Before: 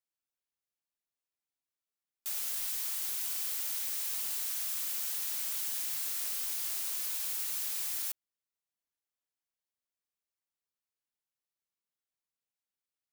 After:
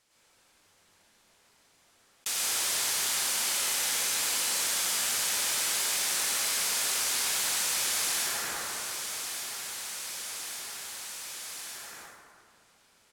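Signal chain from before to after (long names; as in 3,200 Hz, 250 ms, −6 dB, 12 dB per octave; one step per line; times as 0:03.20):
noise gate with hold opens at −28 dBFS
low-pass filter 8,800 Hz 12 dB per octave
on a send: repeating echo 1,163 ms, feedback 43%, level −23 dB
on the sum: dense smooth reverb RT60 2 s, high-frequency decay 0.45×, pre-delay 85 ms, DRR −8.5 dB
envelope flattener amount 70%
level +6 dB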